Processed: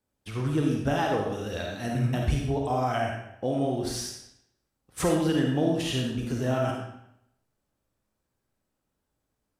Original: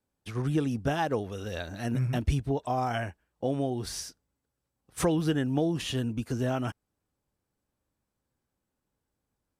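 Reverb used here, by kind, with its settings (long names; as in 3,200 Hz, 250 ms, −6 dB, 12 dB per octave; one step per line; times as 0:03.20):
comb and all-pass reverb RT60 0.79 s, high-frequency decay 0.9×, pre-delay 10 ms, DRR −0.5 dB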